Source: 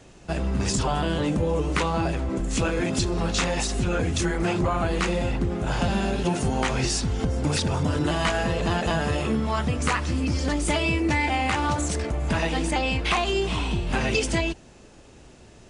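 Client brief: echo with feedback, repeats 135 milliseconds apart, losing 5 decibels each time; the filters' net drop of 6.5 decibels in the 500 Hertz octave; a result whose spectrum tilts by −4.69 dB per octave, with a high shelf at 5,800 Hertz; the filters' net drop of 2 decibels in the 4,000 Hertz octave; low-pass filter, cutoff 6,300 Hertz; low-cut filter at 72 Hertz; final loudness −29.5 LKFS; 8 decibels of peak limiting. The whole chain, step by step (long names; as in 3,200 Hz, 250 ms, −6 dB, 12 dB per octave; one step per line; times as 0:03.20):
high-pass filter 72 Hz
low-pass filter 6,300 Hz
parametric band 500 Hz −9 dB
parametric band 4,000 Hz −4.5 dB
high-shelf EQ 5,800 Hz +7 dB
brickwall limiter −18.5 dBFS
repeating echo 135 ms, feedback 56%, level −5 dB
level −2.5 dB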